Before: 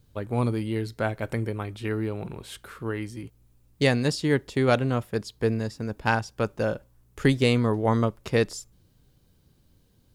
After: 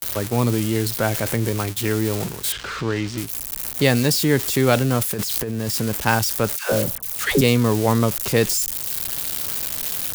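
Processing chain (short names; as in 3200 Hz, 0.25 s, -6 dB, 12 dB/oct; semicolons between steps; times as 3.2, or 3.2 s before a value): switching spikes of -22 dBFS; gate -33 dBFS, range -42 dB; 5.03–5.74 negative-ratio compressor -33 dBFS, ratio -1; transient shaper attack -2 dB, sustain +4 dB; 2.52–3.18 air absorption 160 m; 6.56–7.41 dispersion lows, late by 0.133 s, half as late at 710 Hz; three-band squash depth 40%; gain +5.5 dB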